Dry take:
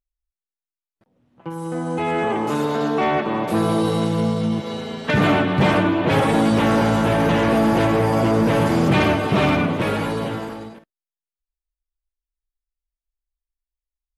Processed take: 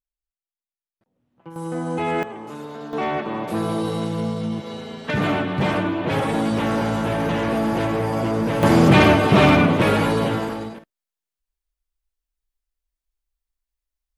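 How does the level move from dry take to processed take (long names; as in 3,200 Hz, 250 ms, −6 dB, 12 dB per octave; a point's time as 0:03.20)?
−8.5 dB
from 0:01.56 −1 dB
from 0:02.23 −13 dB
from 0:02.93 −4.5 dB
from 0:08.63 +4 dB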